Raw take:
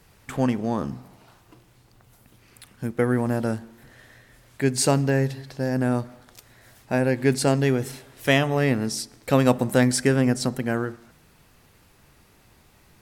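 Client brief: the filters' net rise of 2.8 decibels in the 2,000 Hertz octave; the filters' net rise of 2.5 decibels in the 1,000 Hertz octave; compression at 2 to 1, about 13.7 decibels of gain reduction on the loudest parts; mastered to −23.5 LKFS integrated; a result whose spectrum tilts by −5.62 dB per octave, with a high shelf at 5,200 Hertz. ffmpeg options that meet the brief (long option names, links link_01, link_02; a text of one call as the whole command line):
ffmpeg -i in.wav -af "equalizer=frequency=1000:width_type=o:gain=3,equalizer=frequency=2000:width_type=o:gain=3.5,highshelf=frequency=5200:gain=-8,acompressor=threshold=-39dB:ratio=2,volume=11.5dB" out.wav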